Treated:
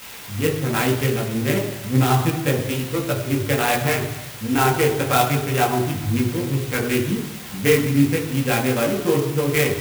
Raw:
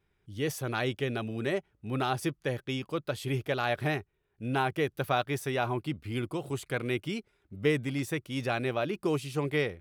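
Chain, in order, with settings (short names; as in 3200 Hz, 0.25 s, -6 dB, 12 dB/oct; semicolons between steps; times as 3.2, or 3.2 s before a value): Wiener smoothing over 41 samples; in parallel at -6.5 dB: requantised 6-bit, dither triangular; on the sum: chorus voices 2, 1 Hz, delay 18 ms, depth 3 ms; reverb RT60 1.0 s, pre-delay 3 ms, DRR 1.5 dB; clock jitter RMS 0.044 ms; gain +4.5 dB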